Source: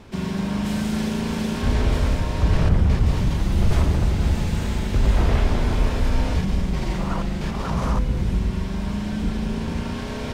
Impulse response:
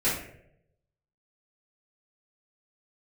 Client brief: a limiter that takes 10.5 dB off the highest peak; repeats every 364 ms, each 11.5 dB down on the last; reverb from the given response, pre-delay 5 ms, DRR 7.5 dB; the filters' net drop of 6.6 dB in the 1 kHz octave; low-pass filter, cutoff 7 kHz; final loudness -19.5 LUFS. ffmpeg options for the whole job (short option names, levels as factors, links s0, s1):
-filter_complex "[0:a]lowpass=7000,equalizer=f=1000:t=o:g=-8.5,alimiter=limit=0.126:level=0:latency=1,aecho=1:1:364|728|1092:0.266|0.0718|0.0194,asplit=2[s0][s1];[1:a]atrim=start_sample=2205,adelay=5[s2];[s1][s2]afir=irnorm=-1:irlink=0,volume=0.112[s3];[s0][s3]amix=inputs=2:normalize=0,volume=2.24"